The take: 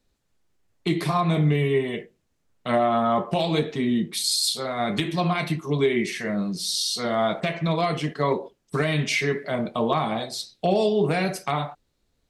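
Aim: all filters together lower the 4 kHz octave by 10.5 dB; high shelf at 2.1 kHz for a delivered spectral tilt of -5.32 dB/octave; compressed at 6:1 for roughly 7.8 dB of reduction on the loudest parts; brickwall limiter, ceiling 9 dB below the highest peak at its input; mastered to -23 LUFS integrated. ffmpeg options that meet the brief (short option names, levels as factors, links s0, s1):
-af "highshelf=f=2100:g=-8,equalizer=f=4000:t=o:g=-5,acompressor=threshold=0.0501:ratio=6,volume=3.35,alimiter=limit=0.211:level=0:latency=1"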